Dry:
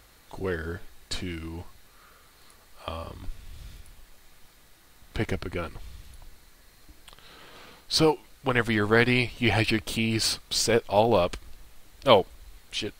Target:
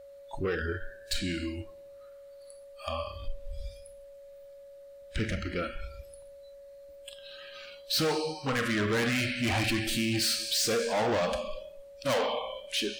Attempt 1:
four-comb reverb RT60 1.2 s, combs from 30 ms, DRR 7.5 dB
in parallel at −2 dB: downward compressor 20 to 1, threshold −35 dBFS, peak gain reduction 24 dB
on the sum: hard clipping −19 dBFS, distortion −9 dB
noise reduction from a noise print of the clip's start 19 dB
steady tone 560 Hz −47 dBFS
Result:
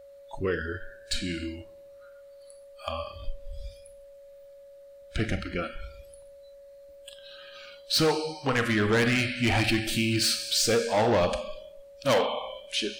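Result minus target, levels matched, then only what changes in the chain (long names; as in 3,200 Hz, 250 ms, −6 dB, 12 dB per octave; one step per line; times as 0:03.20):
hard clipping: distortion −4 dB
change: hard clipping −25 dBFS, distortion −5 dB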